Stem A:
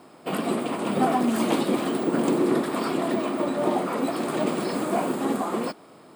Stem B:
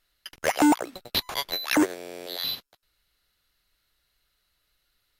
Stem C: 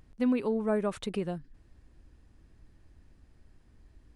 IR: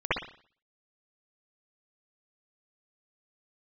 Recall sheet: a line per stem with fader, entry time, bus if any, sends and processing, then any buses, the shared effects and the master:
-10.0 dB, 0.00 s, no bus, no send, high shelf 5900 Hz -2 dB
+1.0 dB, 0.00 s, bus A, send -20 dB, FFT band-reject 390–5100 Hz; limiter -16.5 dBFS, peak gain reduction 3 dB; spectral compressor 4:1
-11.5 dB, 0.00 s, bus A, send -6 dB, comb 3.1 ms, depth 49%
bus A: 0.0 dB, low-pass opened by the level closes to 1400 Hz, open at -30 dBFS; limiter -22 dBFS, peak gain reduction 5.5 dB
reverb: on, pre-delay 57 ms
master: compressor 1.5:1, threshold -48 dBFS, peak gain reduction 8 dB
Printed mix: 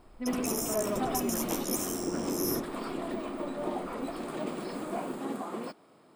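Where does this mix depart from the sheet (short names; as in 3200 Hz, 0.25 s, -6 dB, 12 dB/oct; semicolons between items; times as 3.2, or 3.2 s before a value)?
stem B: missing limiter -16.5 dBFS, peak gain reduction 3 dB; master: missing compressor 1.5:1, threshold -48 dBFS, peak gain reduction 8 dB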